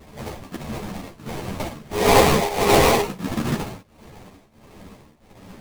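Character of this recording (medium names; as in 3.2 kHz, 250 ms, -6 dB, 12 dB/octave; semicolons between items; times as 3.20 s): tremolo triangle 1.5 Hz, depth 90%; aliases and images of a low sample rate 1.5 kHz, jitter 20%; a shimmering, thickened sound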